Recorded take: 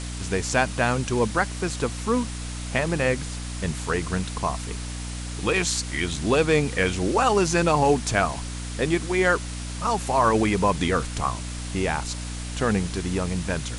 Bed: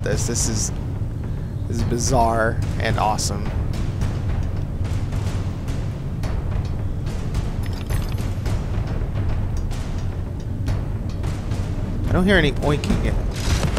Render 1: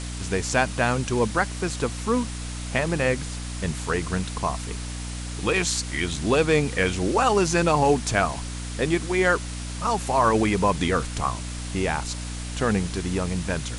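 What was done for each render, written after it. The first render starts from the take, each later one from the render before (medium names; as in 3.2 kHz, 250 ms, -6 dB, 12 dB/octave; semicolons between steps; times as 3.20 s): no audible change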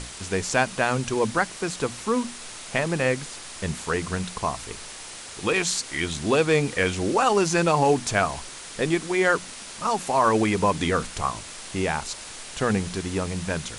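hum notches 60/120/180/240/300 Hz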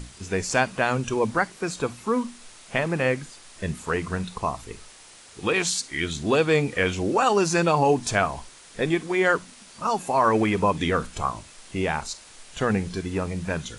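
noise print and reduce 9 dB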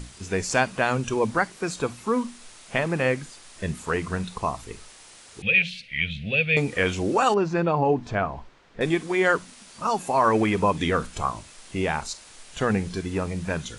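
5.42–6.57 s: FFT filter 200 Hz 0 dB, 330 Hz -27 dB, 530 Hz -4 dB, 1 kHz -30 dB, 2.5 kHz +10 dB, 7.3 kHz -29 dB, 11 kHz -22 dB; 7.34–8.81 s: tape spacing loss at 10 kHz 33 dB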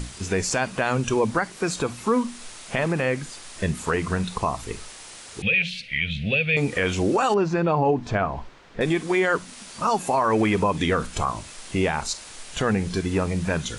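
in parallel at +0.5 dB: compression, threshold -29 dBFS, peak gain reduction 13.5 dB; on the sum: peak limiter -12 dBFS, peak gain reduction 7.5 dB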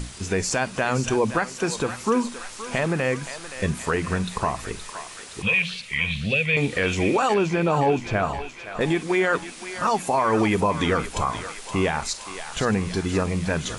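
thinning echo 521 ms, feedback 70%, high-pass 790 Hz, level -9.5 dB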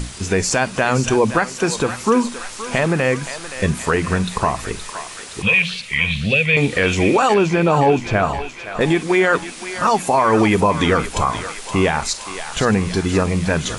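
trim +6 dB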